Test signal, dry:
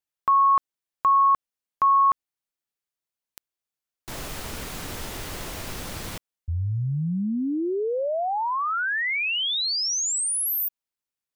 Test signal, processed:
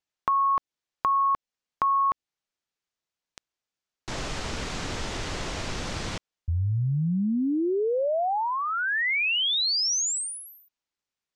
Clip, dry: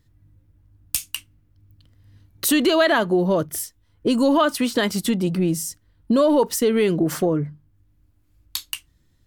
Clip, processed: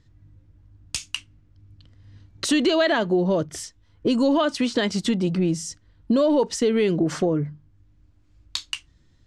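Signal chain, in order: low-pass 7.1 kHz 24 dB/octave; dynamic bell 1.2 kHz, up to -5 dB, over -32 dBFS, Q 1.6; in parallel at +1.5 dB: compression, threshold -30 dBFS; on the sum: trim -3.5 dB

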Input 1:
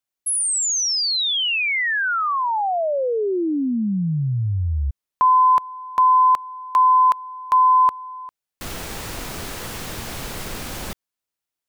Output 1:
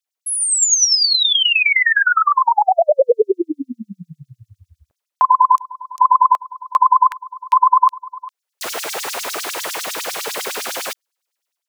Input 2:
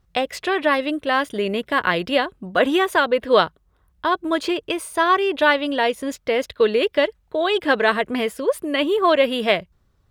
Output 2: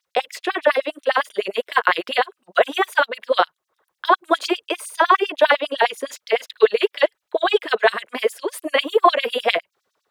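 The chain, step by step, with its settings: LFO high-pass sine 9.9 Hz 420–6300 Hz; dynamic bell 4.8 kHz, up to -3 dB, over -34 dBFS, Q 0.76; level rider gain up to 8 dB; trim -1 dB

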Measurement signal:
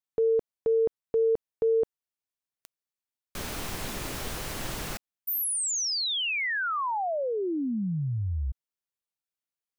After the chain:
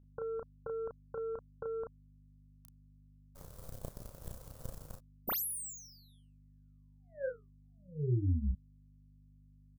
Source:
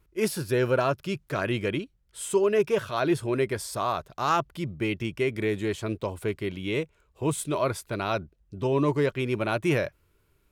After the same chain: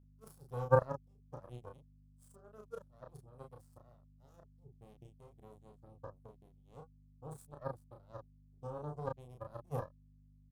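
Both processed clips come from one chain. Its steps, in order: FFT filter 140 Hz 0 dB, 320 Hz -29 dB, 530 Hz 0 dB, 830 Hz -25 dB, 2.3 kHz -23 dB, 3.3 kHz -11 dB, 7.8 kHz -1 dB, 13 kHz +2 dB; power-law waveshaper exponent 3; resonant high shelf 1.6 kHz -10 dB, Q 1.5; hum 50 Hz, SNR 18 dB; doubling 33 ms -3.5 dB; trim +6 dB

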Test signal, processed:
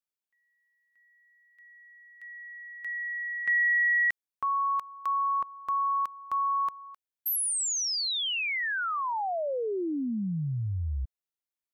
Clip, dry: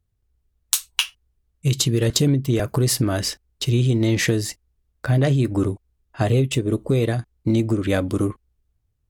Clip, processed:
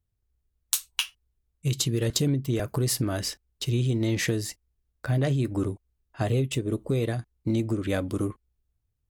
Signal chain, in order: treble shelf 12 kHz +4 dB; trim -6.5 dB

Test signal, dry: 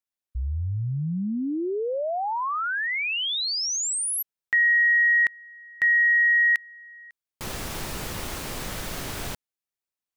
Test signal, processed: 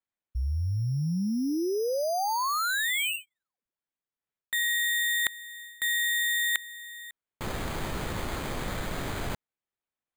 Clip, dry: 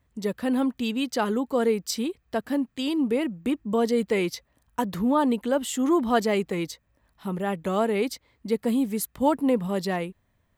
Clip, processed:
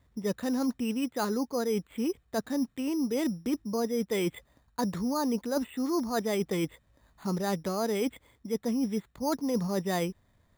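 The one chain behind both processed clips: reverse; compression 10:1, threshold -29 dBFS; reverse; careless resampling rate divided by 8×, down filtered, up hold; trim +3 dB

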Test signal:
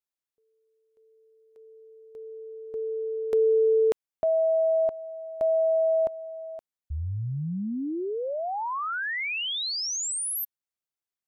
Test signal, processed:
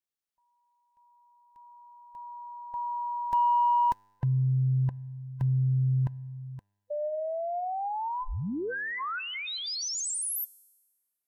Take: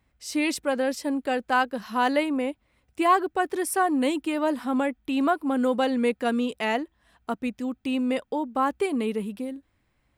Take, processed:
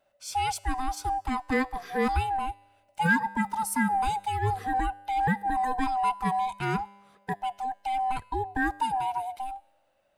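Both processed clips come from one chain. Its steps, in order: split-band scrambler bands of 500 Hz; dynamic bell 2.8 kHz, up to -5 dB, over -42 dBFS, Q 1.3; feedback comb 100 Hz, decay 1.3 s, harmonics all, mix 40%; in parallel at -10 dB: saturation -22 dBFS

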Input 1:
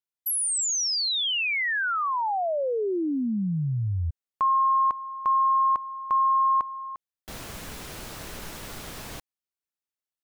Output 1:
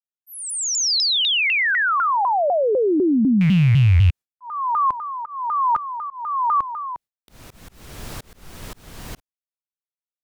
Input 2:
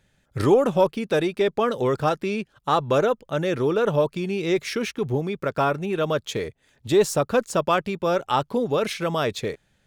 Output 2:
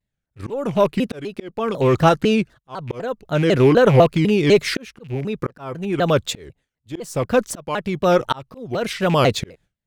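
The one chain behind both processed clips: rattle on loud lows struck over -29 dBFS, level -27 dBFS; gate with hold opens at -38 dBFS, closes at -42 dBFS, hold 84 ms, range -28 dB; bass shelf 180 Hz +8 dB; slow attack 667 ms; vibrato with a chosen wave saw down 4 Hz, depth 250 cents; trim +7 dB

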